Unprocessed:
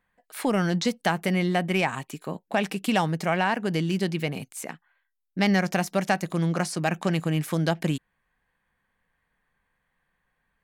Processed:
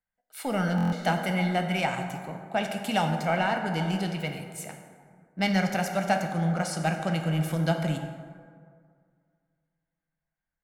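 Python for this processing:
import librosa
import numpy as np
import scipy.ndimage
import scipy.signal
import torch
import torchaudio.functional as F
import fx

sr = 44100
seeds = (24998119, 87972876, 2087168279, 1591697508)

p1 = 10.0 ** (-24.5 / 20.0) * np.tanh(x / 10.0 ** (-24.5 / 20.0))
p2 = x + (p1 * 10.0 ** (-9.5 / 20.0))
p3 = p2 + 0.43 * np.pad(p2, (int(1.4 * sr / 1000.0), 0))[:len(p2)]
p4 = fx.rev_plate(p3, sr, seeds[0], rt60_s=2.9, hf_ratio=0.4, predelay_ms=0, drr_db=3.0)
p5 = fx.buffer_glitch(p4, sr, at_s=(0.76,), block=1024, repeats=6)
p6 = fx.band_widen(p5, sr, depth_pct=40)
y = p6 * 10.0 ** (-6.0 / 20.0)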